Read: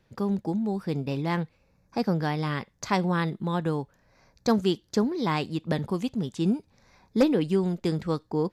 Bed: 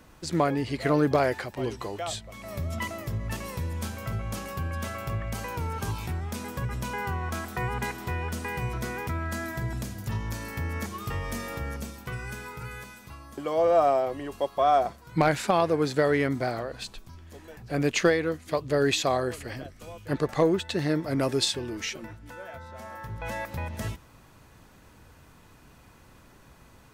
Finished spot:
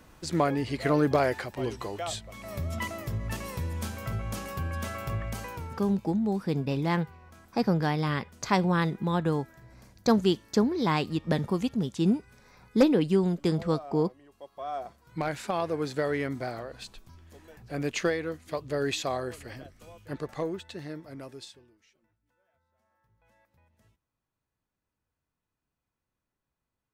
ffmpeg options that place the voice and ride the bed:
ffmpeg -i stem1.wav -i stem2.wav -filter_complex "[0:a]adelay=5600,volume=0.5dB[link_01];[1:a]volume=14.5dB,afade=type=out:start_time=5.23:duration=0.72:silence=0.1,afade=type=in:start_time=14.33:duration=1.44:silence=0.16788,afade=type=out:start_time=19.53:duration=2.25:silence=0.0421697[link_02];[link_01][link_02]amix=inputs=2:normalize=0" out.wav

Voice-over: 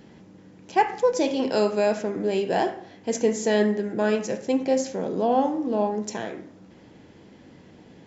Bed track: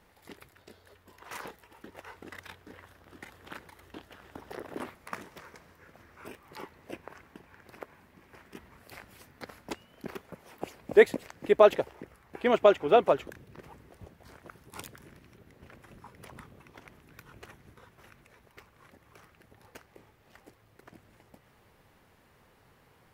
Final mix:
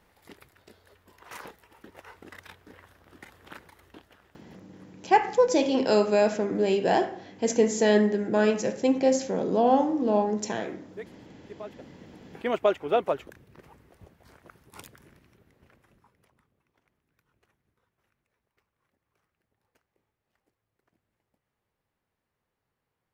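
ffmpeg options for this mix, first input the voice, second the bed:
ffmpeg -i stem1.wav -i stem2.wav -filter_complex "[0:a]adelay=4350,volume=0.5dB[link_01];[1:a]volume=18.5dB,afade=type=out:start_time=3.67:duration=1:silence=0.0841395,afade=type=in:start_time=11.77:duration=0.65:silence=0.105925,afade=type=out:start_time=15.05:duration=1.29:silence=0.125893[link_02];[link_01][link_02]amix=inputs=2:normalize=0" out.wav

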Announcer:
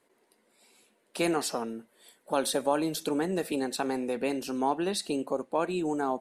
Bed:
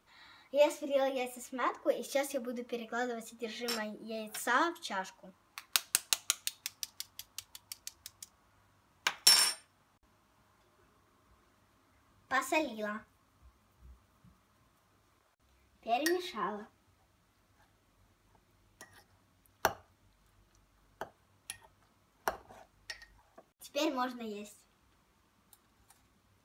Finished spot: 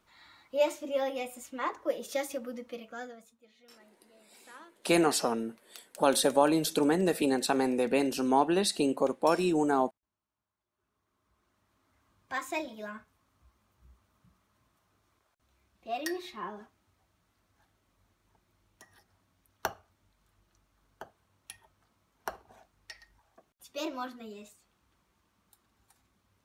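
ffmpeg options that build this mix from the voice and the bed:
ffmpeg -i stem1.wav -i stem2.wav -filter_complex "[0:a]adelay=3700,volume=3dB[link_01];[1:a]volume=19dB,afade=type=out:start_time=2.47:duration=0.95:silence=0.0794328,afade=type=in:start_time=10.67:duration=1.31:silence=0.112202[link_02];[link_01][link_02]amix=inputs=2:normalize=0" out.wav

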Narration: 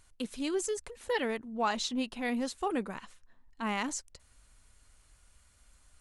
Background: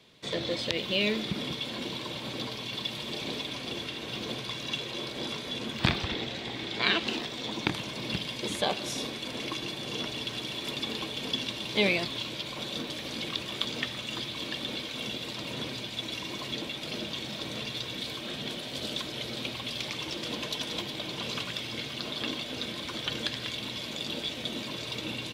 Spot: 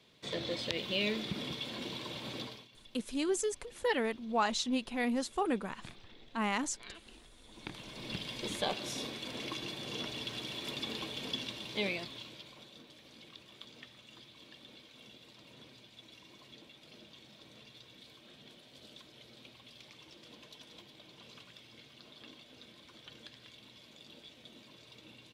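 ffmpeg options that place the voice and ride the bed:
ffmpeg -i stem1.wav -i stem2.wav -filter_complex "[0:a]adelay=2750,volume=0dB[link_01];[1:a]volume=14dB,afade=type=out:start_time=2.37:duration=0.31:silence=0.105925,afade=type=in:start_time=7.47:duration=0.89:silence=0.105925,afade=type=out:start_time=11.14:duration=1.58:silence=0.188365[link_02];[link_01][link_02]amix=inputs=2:normalize=0" out.wav

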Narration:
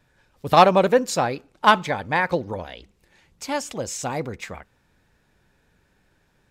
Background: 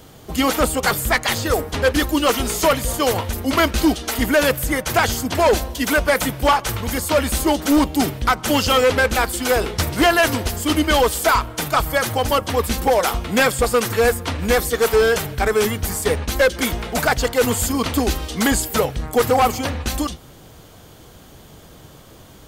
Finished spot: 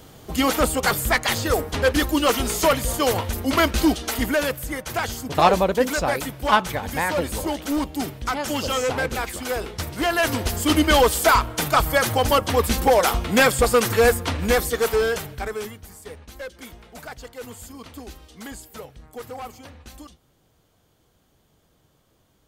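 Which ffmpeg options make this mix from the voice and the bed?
ffmpeg -i stem1.wav -i stem2.wav -filter_complex "[0:a]adelay=4850,volume=-3dB[link_01];[1:a]volume=6.5dB,afade=type=out:start_time=4.05:duration=0.5:silence=0.473151,afade=type=in:start_time=10.02:duration=0.61:silence=0.375837,afade=type=out:start_time=14.12:duration=1.71:silence=0.105925[link_02];[link_01][link_02]amix=inputs=2:normalize=0" out.wav

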